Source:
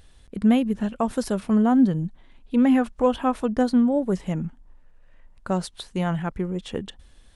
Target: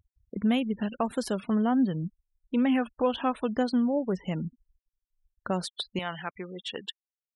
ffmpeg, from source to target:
-af "asetnsamples=n=441:p=0,asendcmd='5.99 highpass f 1000',highpass=f=150:p=1,afftfilt=real='re*gte(hypot(re,im),0.00891)':imag='im*gte(hypot(re,im),0.00891)':win_size=1024:overlap=0.75,adynamicequalizer=threshold=0.00398:dfrequency=3000:dqfactor=1.1:tfrequency=3000:tqfactor=1.1:attack=5:release=100:ratio=0.375:range=3.5:mode=boostabove:tftype=bell,acompressor=threshold=0.0282:ratio=1.5"

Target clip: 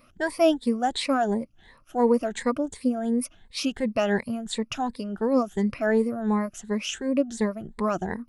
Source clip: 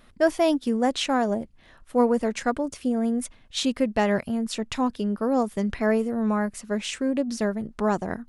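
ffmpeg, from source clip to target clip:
-af "afftfilt=real='re*pow(10,15/40*sin(2*PI*(0.94*log(max(b,1)*sr/1024/100)/log(2)-(2.8)*(pts-256)/sr)))':imag='im*pow(10,15/40*sin(2*PI*(0.94*log(max(b,1)*sr/1024/100)/log(2)-(2.8)*(pts-256)/sr)))':win_size=1024:overlap=0.75,volume=0.668"

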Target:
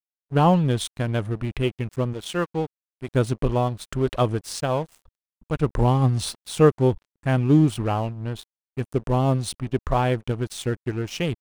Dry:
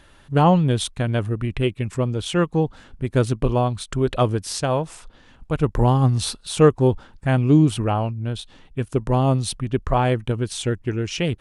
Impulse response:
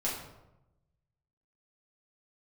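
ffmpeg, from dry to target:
-filter_complex "[0:a]asettb=1/sr,asplit=3[s0][s1][s2];[s0]atrim=end=2.134[s3];[s1]atrim=start=2.13:end=3.08,asetpts=PTS-STARTPTS,afade=t=in:d=0.004:c=qsin,afade=t=out:st=0.946:d=0.004:c=qsin,lowshelf=f=240:g=-8.5[s4];[s2]atrim=start=3.076[s5];[s3][s4]acrossfade=d=0.004:c1=hsin:c2=qsin[s6];[s6][s5]acrossfade=d=0.004:c1=qsin:c2=hsin,aeval=exprs='sgn(val(0))*max(abs(val(0))-0.0141,0)':c=same,volume=0.841"

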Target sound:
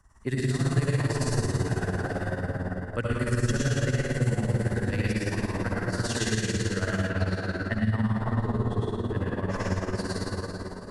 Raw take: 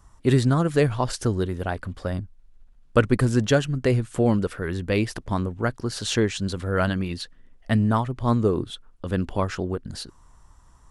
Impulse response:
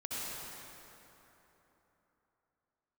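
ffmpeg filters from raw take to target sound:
-filter_complex "[1:a]atrim=start_sample=2205,asetrate=38367,aresample=44100[s0];[0:a][s0]afir=irnorm=-1:irlink=0,tremolo=f=18:d=0.68,asettb=1/sr,asplit=3[s1][s2][s3];[s1]atrim=end=7.094[s4];[s2]atrim=start=7.09:end=9.52,asetpts=PTS-STARTPTS,afade=t=in:d=0.004:c=qsin,afade=t=out:st=2.426:d=0.004:c=qsin,highshelf=f=5200:g=-12[s5];[s3]atrim=start=9.516[s6];[s4][s5]acrossfade=d=0.004:c1=hsin:c2=qsin[s7];[s7][s6]acrossfade=d=0.004:c1=qsin:c2=hsin,acrossover=split=120|3000[s8][s9][s10];[s9]acompressor=threshold=0.0398:ratio=6[s11];[s8][s11][s10]amix=inputs=3:normalize=0,superequalizer=11b=2.24:13b=0.631"

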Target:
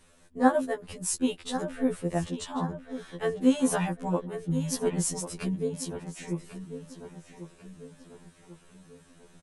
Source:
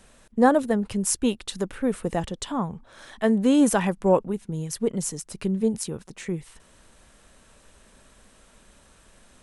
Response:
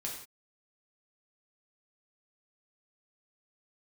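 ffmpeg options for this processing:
-filter_complex "[0:a]asettb=1/sr,asplit=3[s0][s1][s2];[s0]atrim=end=4.444[s3];[s1]atrim=start=4.44:end=5.55,asetpts=PTS-STARTPTS,afade=t=in:d=0.004:c=qsin,afade=t=out:st=1.106:d=0.004:c=qsin,acontrast=30[s4];[s2]atrim=start=5.546[s5];[s3][s4]acrossfade=d=0.004:c1=hsin:c2=qsin[s6];[s6][s5]acrossfade=d=0.004:c1=qsin:c2=hsin,asplit=2[s7][s8];[s8]adelay=1093,lowpass=f=3500:p=1,volume=0.282,asplit=2[s9][s10];[s10]adelay=1093,lowpass=f=3500:p=1,volume=0.48,asplit=2[s11][s12];[s12]adelay=1093,lowpass=f=3500:p=1,volume=0.48,asplit=2[s13][s14];[s14]adelay=1093,lowpass=f=3500:p=1,volume=0.48,asplit=2[s15][s16];[s16]adelay=1093,lowpass=f=3500:p=1,volume=0.48[s17];[s7][s9][s11][s13][s15][s17]amix=inputs=6:normalize=0,afftfilt=real='re*2*eq(mod(b,4),0)':imag='im*2*eq(mod(b,4),0)':win_size=2048:overlap=0.75,volume=0.75"

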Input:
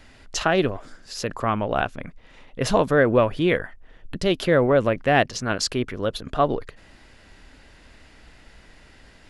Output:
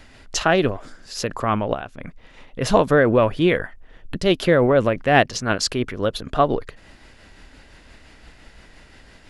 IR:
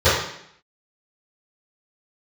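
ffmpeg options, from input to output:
-filter_complex "[0:a]asplit=3[s0][s1][s2];[s0]afade=t=out:st=1.73:d=0.02[s3];[s1]acompressor=threshold=0.0355:ratio=6,afade=t=in:st=1.73:d=0.02,afade=t=out:st=2.61:d=0.02[s4];[s2]afade=t=in:st=2.61:d=0.02[s5];[s3][s4][s5]amix=inputs=3:normalize=0,tremolo=f=5.8:d=0.31,volume=1.58"

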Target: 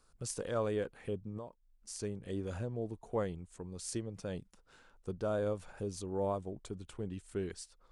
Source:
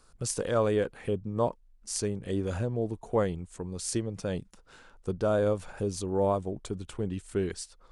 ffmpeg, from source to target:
-filter_complex "[0:a]asettb=1/sr,asplit=3[s0][s1][s2];[s0]atrim=end=1.374[s3];[s1]atrim=start=1.37:end=2,asetpts=PTS-STARTPTS,afade=t=in:d=0.004:c=qsin,afade=t=out:st=0.626:d=0.004:c=qsin,acompressor=threshold=0.02:ratio=12[s4];[s2]atrim=start=1.996[s5];[s3][s4]acrossfade=d=0.004:c1=hsin:c2=qsin[s6];[s6][s5]acrossfade=d=0.004:c1=qsin:c2=hsin,volume=0.398"

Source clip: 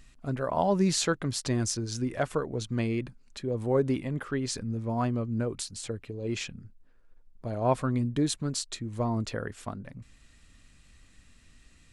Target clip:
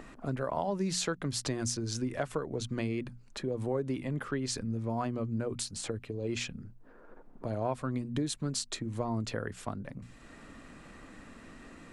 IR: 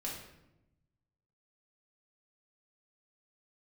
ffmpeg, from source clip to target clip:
-filter_complex "[0:a]acrossover=split=190|1500[s0][s1][s2];[s1]acompressor=mode=upward:threshold=0.0178:ratio=2.5[s3];[s0][s3][s2]amix=inputs=3:normalize=0,bandreject=f=60:t=h:w=6,bandreject=f=120:t=h:w=6,bandreject=f=180:t=h:w=6,bandreject=f=240:t=h:w=6,acompressor=threshold=0.0355:ratio=4"

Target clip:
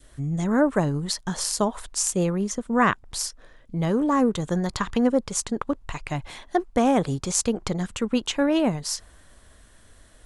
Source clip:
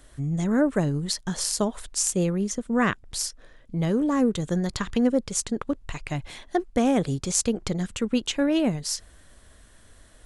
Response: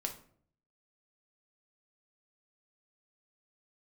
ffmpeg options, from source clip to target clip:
-af "adynamicequalizer=threshold=0.00794:dfrequency=980:dqfactor=1.3:tfrequency=980:tqfactor=1.3:attack=5:release=100:ratio=0.375:range=4:mode=boostabove:tftype=bell"

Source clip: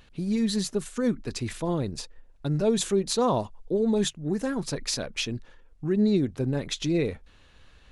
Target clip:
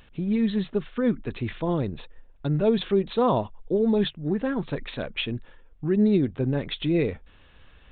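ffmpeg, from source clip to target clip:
-af "aresample=8000,aresample=44100,volume=1.26"

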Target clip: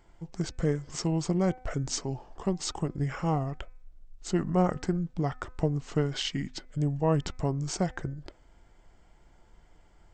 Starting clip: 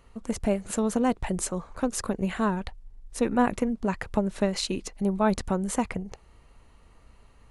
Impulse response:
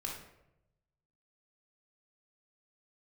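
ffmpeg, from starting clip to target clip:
-af "asetrate=32667,aresample=44100,bandreject=f=253.5:t=h:w=4,bandreject=f=507:t=h:w=4,bandreject=f=760.5:t=h:w=4,bandreject=f=1014:t=h:w=4,bandreject=f=1267.5:t=h:w=4,bandreject=f=1521:t=h:w=4,bandreject=f=1774.5:t=h:w=4,bandreject=f=2028:t=h:w=4,bandreject=f=2281.5:t=h:w=4,bandreject=f=2535:t=h:w=4,volume=0.75"

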